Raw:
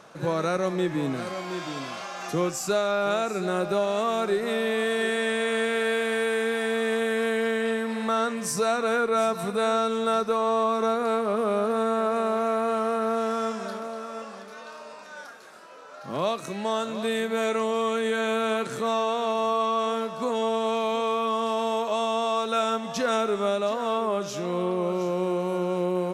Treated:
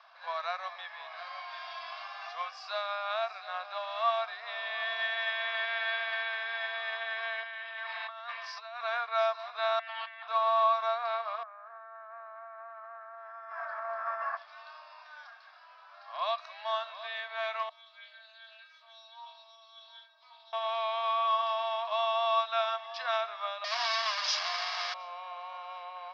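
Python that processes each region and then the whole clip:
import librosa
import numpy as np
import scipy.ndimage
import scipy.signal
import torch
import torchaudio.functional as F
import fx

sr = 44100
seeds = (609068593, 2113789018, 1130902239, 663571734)

y = fx.chain(x, sr, fx.lowpass(hz=3400.0, slope=12),
    fx.tilt_eq(slope=2.5),
    fx.over_compress(threshold_db=-32.0, ratio=-1.0), at=(7.43, 8.81))
y = fx.chain(y, sr, fx.self_delay(depth_ms=0.33),
    fx.cheby1_bandpass(low_hz=700.0, high_hz=3400.0, order=3),
    fx.over_compress(threshold_db=-37.0, ratio=-1.0), at=(9.79, 10.28))
y = fx.chain(y, sr, fx.high_shelf_res(hz=2400.0, db=-12.0, q=3.0),
    fx.over_compress(threshold_db=-35.0, ratio=-1.0), at=(11.43, 14.37))
y = fx.chain(y, sr, fx.high_shelf(hz=2800.0, db=8.0),
    fx.stiff_resonator(f0_hz=310.0, decay_s=0.51, stiffness=0.002),
    fx.doppler_dist(depth_ms=0.11), at=(17.69, 20.53))
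y = fx.chain(y, sr, fx.clip_1bit(),
    fx.highpass(hz=650.0, slope=12),
    fx.peak_eq(hz=6300.0, db=14.5, octaves=0.88), at=(23.64, 24.94))
y = scipy.signal.sosfilt(scipy.signal.cheby1(5, 1.0, [690.0, 5100.0], 'bandpass', fs=sr, output='sos'), y)
y = y + 0.36 * np.pad(y, (int(1.8 * sr / 1000.0), 0))[:len(y)]
y = fx.upward_expand(y, sr, threshold_db=-34.0, expansion=1.5)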